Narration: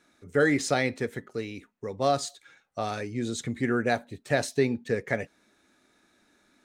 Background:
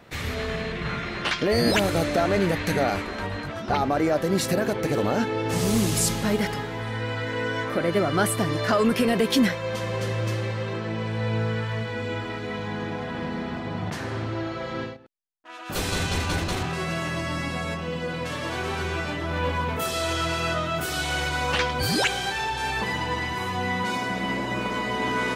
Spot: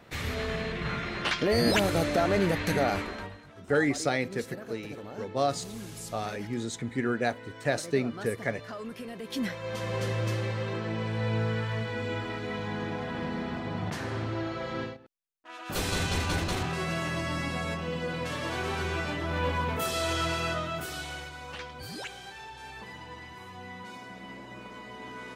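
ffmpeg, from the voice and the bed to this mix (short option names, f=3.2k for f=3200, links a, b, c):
-filter_complex "[0:a]adelay=3350,volume=-2.5dB[a];[1:a]volume=12.5dB,afade=t=out:st=3.03:d=0.35:silence=0.16788,afade=t=in:st=9.22:d=0.75:silence=0.16788,afade=t=out:st=20.25:d=1.08:silence=0.211349[b];[a][b]amix=inputs=2:normalize=0"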